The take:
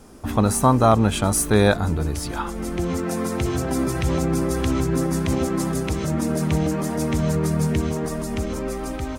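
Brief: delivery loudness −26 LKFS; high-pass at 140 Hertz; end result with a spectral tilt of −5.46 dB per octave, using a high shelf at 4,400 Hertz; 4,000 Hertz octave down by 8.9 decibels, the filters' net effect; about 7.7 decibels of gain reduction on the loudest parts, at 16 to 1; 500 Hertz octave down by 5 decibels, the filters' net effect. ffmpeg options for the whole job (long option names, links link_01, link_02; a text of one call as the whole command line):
ffmpeg -i in.wav -af "highpass=140,equalizer=frequency=500:width_type=o:gain=-6.5,equalizer=frequency=4000:width_type=o:gain=-8.5,highshelf=frequency=4400:gain=-5.5,acompressor=threshold=-22dB:ratio=16,volume=2.5dB" out.wav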